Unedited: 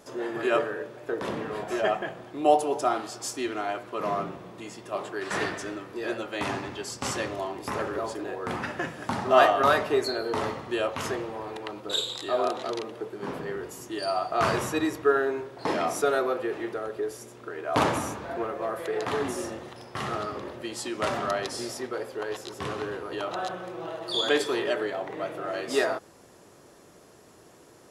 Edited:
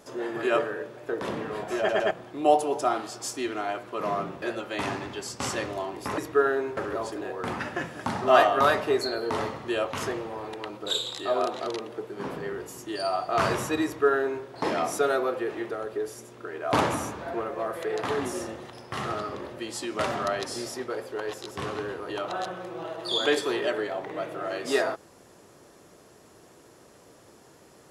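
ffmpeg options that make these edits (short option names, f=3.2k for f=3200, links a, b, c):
-filter_complex "[0:a]asplit=7[a][b][c][d][e][f][g];[a]atrim=end=1.892[h];[b]atrim=start=1.778:end=1.892[i];[c]atrim=start=1.778:end=1.892[j];[d]atrim=start=2.108:end=4.422[k];[e]atrim=start=6.038:end=7.802[l];[f]atrim=start=14.878:end=15.472[m];[g]atrim=start=7.798[n];[h][i]acrossfade=d=0.004:c1=hsin:c2=hsin[o];[o][j]acrossfade=d=0.004:c1=hsin:c2=hsin[p];[p][k]acrossfade=d=0.004:c1=hsin:c2=hsin[q];[q][l]acrossfade=d=0.004:c1=hsin:c2=hsin[r];[r][m]acrossfade=d=0.004:c1=hsin:c2=hsin[s];[s][n]acrossfade=d=0.004:c1=hsin:c2=hsin"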